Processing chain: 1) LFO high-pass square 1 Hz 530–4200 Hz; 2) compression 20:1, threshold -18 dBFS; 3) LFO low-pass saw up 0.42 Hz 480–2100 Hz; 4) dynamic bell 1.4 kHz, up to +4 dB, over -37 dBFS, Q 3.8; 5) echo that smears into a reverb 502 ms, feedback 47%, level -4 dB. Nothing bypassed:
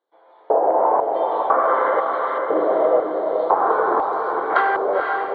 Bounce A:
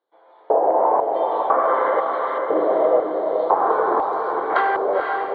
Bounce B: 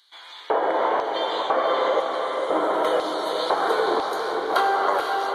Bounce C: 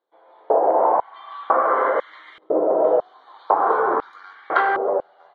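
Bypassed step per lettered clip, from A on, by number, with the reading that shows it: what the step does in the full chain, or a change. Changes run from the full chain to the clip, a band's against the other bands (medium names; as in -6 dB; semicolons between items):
4, 2 kHz band -2.5 dB; 3, loudness change -3.5 LU; 5, echo-to-direct -3.0 dB to none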